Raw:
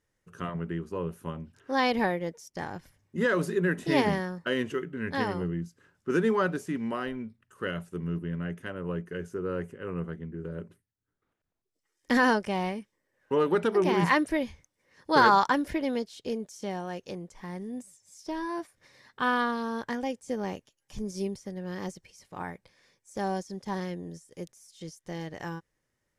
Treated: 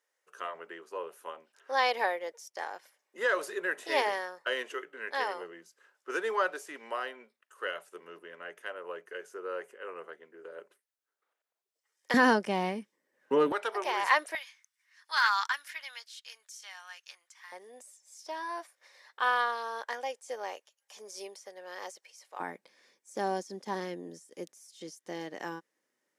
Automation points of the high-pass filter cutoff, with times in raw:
high-pass filter 24 dB per octave
500 Hz
from 0:12.14 190 Hz
from 0:13.52 590 Hz
from 0:14.35 1,300 Hz
from 0:17.52 530 Hz
from 0:22.40 240 Hz

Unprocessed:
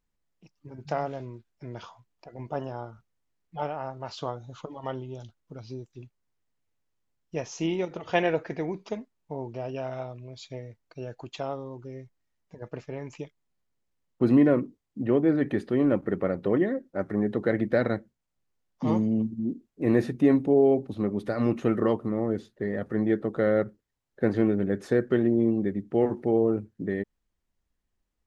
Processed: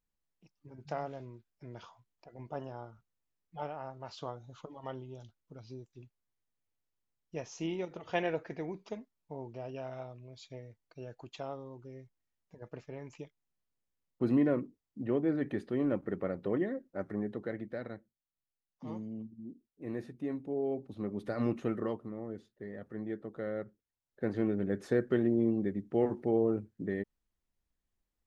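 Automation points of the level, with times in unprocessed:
0:17.10 −8 dB
0:17.76 −16.5 dB
0:20.35 −16.5 dB
0:21.41 −6 dB
0:22.16 −14 dB
0:23.62 −14 dB
0:24.77 −5.5 dB

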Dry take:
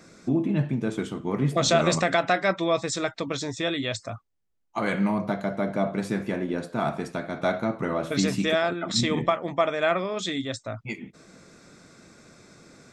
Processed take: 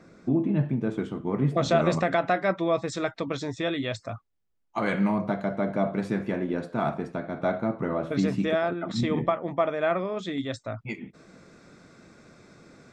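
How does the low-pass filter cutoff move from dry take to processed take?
low-pass filter 6 dB per octave
1,400 Hz
from 0:02.88 2,300 Hz
from 0:04.09 4,200 Hz
from 0:05.16 2,500 Hz
from 0:06.94 1,200 Hz
from 0:10.38 3,000 Hz

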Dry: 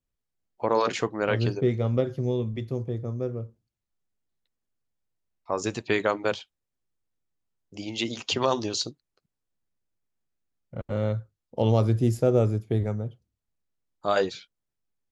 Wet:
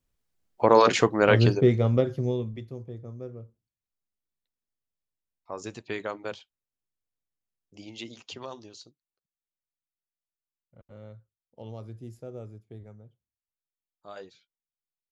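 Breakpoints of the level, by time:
0:01.39 +6 dB
0:02.29 −0.5 dB
0:02.73 −9 dB
0:07.86 −9 dB
0:08.81 −19.5 dB

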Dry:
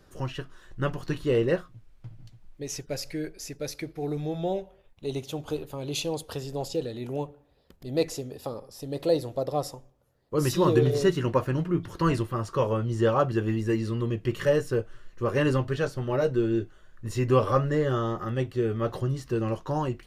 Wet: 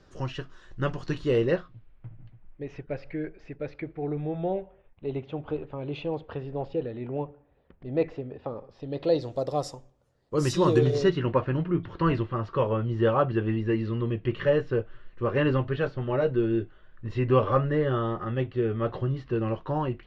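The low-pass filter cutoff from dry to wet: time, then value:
low-pass filter 24 dB per octave
0:01.38 6,600 Hz
0:02.07 2,500 Hz
0:08.49 2,500 Hz
0:09.14 4,300 Hz
0:09.37 8,700 Hz
0:10.79 8,700 Hz
0:11.24 3,500 Hz

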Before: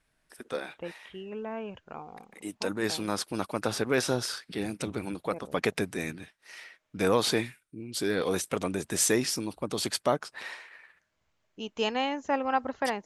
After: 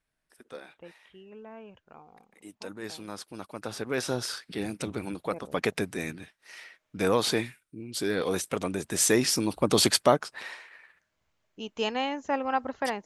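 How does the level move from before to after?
0:03.46 −9 dB
0:04.31 0 dB
0:08.92 0 dB
0:09.77 +10 dB
0:10.48 −0.5 dB

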